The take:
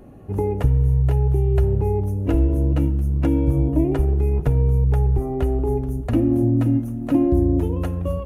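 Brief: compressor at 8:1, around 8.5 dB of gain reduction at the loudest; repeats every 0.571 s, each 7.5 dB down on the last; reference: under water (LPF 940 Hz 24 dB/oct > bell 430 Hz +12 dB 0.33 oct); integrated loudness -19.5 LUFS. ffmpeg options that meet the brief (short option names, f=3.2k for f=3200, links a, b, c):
-af "acompressor=threshold=-22dB:ratio=8,lowpass=f=940:w=0.5412,lowpass=f=940:w=1.3066,equalizer=f=430:t=o:w=0.33:g=12,aecho=1:1:571|1142|1713|2284|2855:0.422|0.177|0.0744|0.0312|0.0131,volume=4.5dB"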